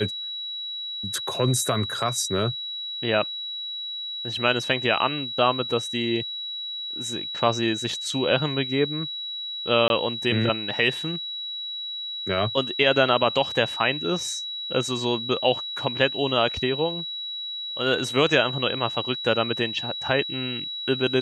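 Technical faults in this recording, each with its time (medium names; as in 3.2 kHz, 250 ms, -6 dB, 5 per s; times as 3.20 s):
whine 3.9 kHz -30 dBFS
9.88–9.90 s: dropout 21 ms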